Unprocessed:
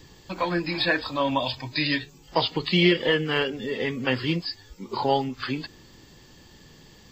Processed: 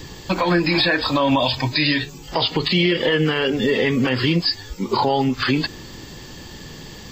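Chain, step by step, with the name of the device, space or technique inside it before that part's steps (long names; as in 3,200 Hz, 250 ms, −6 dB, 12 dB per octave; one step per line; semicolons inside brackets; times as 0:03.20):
loud club master (downward compressor 2 to 1, threshold −26 dBFS, peak gain reduction 7 dB; hard clipping −13 dBFS, distortion −43 dB; boost into a limiter +21.5 dB)
level −8 dB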